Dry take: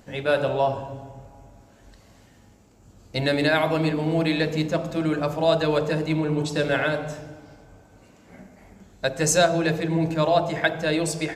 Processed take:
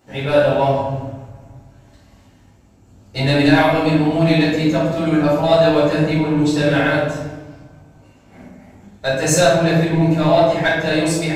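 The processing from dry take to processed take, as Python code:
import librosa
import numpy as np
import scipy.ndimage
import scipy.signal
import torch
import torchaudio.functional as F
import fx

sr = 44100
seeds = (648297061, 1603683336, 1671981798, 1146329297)

y = scipy.signal.sosfilt(scipy.signal.butter(2, 41.0, 'highpass', fs=sr, output='sos'), x)
y = fx.leveller(y, sr, passes=1)
y = fx.room_shoebox(y, sr, seeds[0], volume_m3=210.0, walls='mixed', distance_m=4.4)
y = y * librosa.db_to_amplitude(-9.5)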